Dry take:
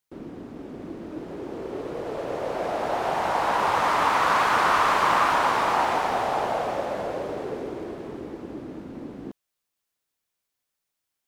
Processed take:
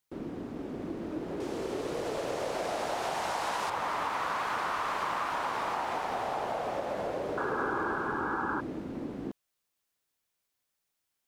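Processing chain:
0:01.40–0:03.70: parametric band 7,800 Hz +11.5 dB 2.6 octaves
downward compressor 6 to 1, threshold −30 dBFS, peak gain reduction 12.5 dB
0:07.37–0:08.61: sound drawn into the spectrogram noise 760–1,700 Hz −34 dBFS

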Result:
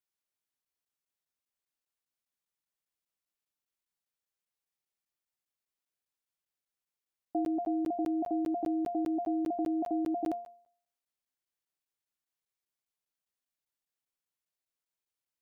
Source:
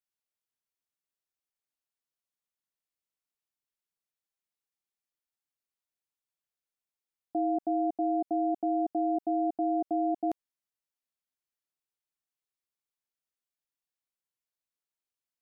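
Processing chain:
hum removal 232.9 Hz, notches 5
regular buffer underruns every 0.20 s, samples 512, zero

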